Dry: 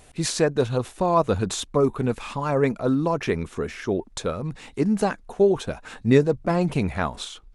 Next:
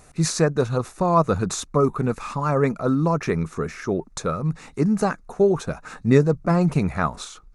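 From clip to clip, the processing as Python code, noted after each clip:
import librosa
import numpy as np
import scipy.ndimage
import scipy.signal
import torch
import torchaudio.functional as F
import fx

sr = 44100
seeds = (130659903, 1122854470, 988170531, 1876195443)

y = fx.graphic_eq_31(x, sr, hz=(160, 1250, 3150, 6300), db=(8, 8, -11, 4))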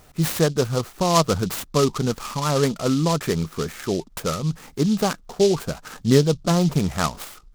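y = fx.noise_mod_delay(x, sr, seeds[0], noise_hz=4500.0, depth_ms=0.071)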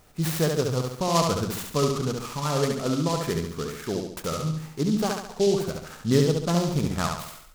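y = fx.echo_feedback(x, sr, ms=70, feedback_pct=46, wet_db=-4)
y = F.gain(torch.from_numpy(y), -5.5).numpy()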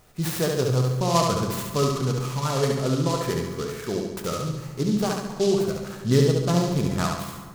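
y = fx.rev_fdn(x, sr, rt60_s=1.9, lf_ratio=1.1, hf_ratio=0.6, size_ms=47.0, drr_db=6.0)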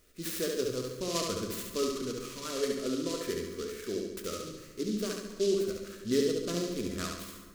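y = fx.fixed_phaser(x, sr, hz=340.0, stages=4)
y = F.gain(torch.from_numpy(y), -5.5).numpy()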